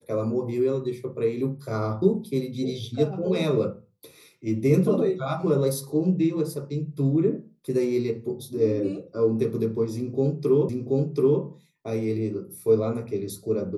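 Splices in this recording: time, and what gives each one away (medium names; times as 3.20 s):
10.69 s: repeat of the last 0.73 s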